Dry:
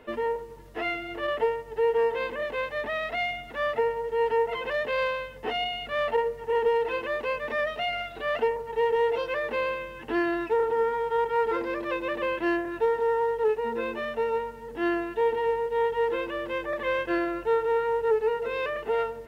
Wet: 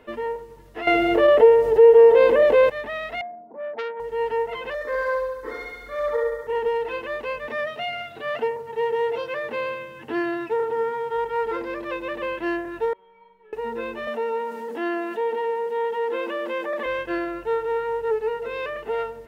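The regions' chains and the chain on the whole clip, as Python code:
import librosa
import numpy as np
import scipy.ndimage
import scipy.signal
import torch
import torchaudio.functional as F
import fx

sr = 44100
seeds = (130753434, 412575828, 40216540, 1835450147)

y = fx.chain(x, sr, fx.peak_eq(hz=490.0, db=12.5, octaves=1.3),
    fx.env_flatten(amount_pct=50), at=(0.87, 2.7))
y = fx.chain(y, sr, fx.cheby1_bandpass(low_hz=180.0, high_hz=980.0, order=4),
    fx.transformer_sat(knee_hz=1500.0), at=(3.21, 4.0))
y = fx.chain(y, sr, fx.fixed_phaser(hz=760.0, stages=6),
    fx.comb(ms=3.7, depth=0.6),
    fx.room_flutter(wall_m=11.9, rt60_s=1.1), at=(4.74, 6.47))
y = fx.chain(y, sr, fx.highpass(hz=100.0, slope=24),
    fx.low_shelf(hz=130.0, db=6.5), at=(7.48, 11.14))
y = fx.chain(y, sr, fx.median_filter(points=25),
    fx.lowpass(hz=2700.0, slope=24),
    fx.comb_fb(f0_hz=190.0, decay_s=0.75, harmonics='all', damping=0.0, mix_pct=100), at=(12.93, 13.53))
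y = fx.chain(y, sr, fx.cheby_ripple_highpass(hz=170.0, ripple_db=3),
    fx.env_flatten(amount_pct=50), at=(14.07, 16.86))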